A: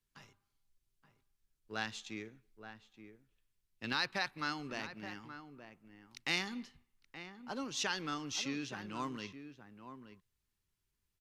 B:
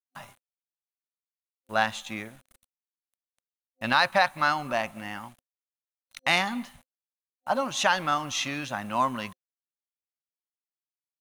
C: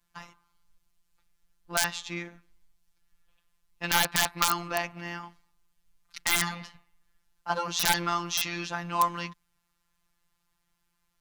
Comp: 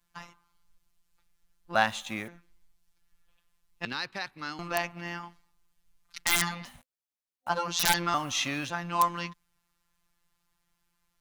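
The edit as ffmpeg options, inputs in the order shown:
-filter_complex "[1:a]asplit=3[s0][s1][s2];[2:a]asplit=5[s3][s4][s5][s6][s7];[s3]atrim=end=1.752[s8];[s0]atrim=start=1.748:end=2.282[s9];[s4]atrim=start=2.278:end=3.852[s10];[0:a]atrim=start=3.848:end=4.592[s11];[s5]atrim=start=4.588:end=6.652[s12];[s1]atrim=start=6.648:end=7.492[s13];[s6]atrim=start=7.488:end=8.142[s14];[s2]atrim=start=8.138:end=8.702[s15];[s7]atrim=start=8.698[s16];[s8][s9]acrossfade=d=0.004:c1=hsin:c2=hsin[s17];[s17][s10]acrossfade=d=0.004:c1=hsin:c2=hsin[s18];[s18][s11]acrossfade=d=0.004:c1=hsin:c2=hsin[s19];[s19][s12]acrossfade=d=0.004:c1=hsin:c2=hsin[s20];[s20][s13]acrossfade=d=0.004:c1=hsin:c2=hsin[s21];[s21][s14]acrossfade=d=0.004:c1=hsin:c2=hsin[s22];[s22][s15]acrossfade=d=0.004:c1=hsin:c2=hsin[s23];[s23][s16]acrossfade=d=0.004:c1=hsin:c2=hsin"

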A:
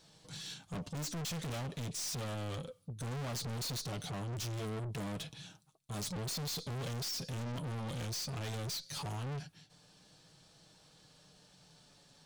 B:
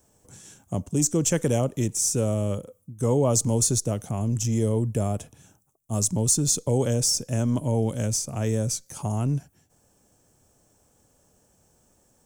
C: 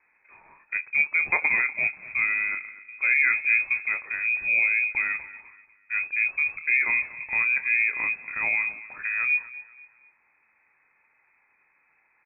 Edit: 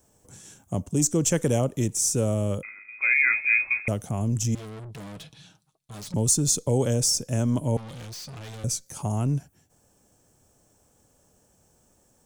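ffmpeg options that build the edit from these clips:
-filter_complex "[0:a]asplit=2[s0][s1];[1:a]asplit=4[s2][s3][s4][s5];[s2]atrim=end=2.632[s6];[2:a]atrim=start=2.628:end=3.882[s7];[s3]atrim=start=3.878:end=4.552[s8];[s0]atrim=start=4.548:end=6.142[s9];[s4]atrim=start=6.138:end=7.772[s10];[s1]atrim=start=7.768:end=8.642[s11];[s5]atrim=start=8.638[s12];[s6][s7]acrossfade=d=0.004:c1=hsin:c2=hsin[s13];[s13][s8]acrossfade=d=0.004:c1=hsin:c2=hsin[s14];[s14][s9]acrossfade=d=0.004:c1=hsin:c2=hsin[s15];[s15][s10]acrossfade=d=0.004:c1=hsin:c2=hsin[s16];[s16][s11]acrossfade=d=0.004:c1=hsin:c2=hsin[s17];[s17][s12]acrossfade=d=0.004:c1=hsin:c2=hsin"

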